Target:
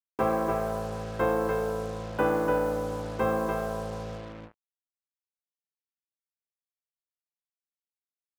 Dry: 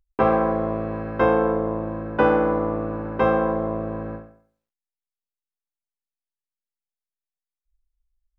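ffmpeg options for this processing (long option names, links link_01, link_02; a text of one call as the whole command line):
ffmpeg -i in.wav -af "aecho=1:1:293:0.596,acrusher=bits=5:mix=0:aa=0.5,volume=-7.5dB" out.wav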